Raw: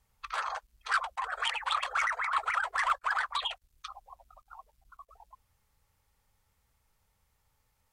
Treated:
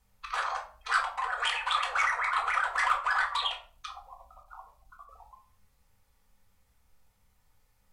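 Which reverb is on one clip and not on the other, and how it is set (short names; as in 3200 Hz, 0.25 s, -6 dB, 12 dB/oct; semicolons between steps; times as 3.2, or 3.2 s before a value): shoebox room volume 390 m³, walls furnished, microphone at 1.9 m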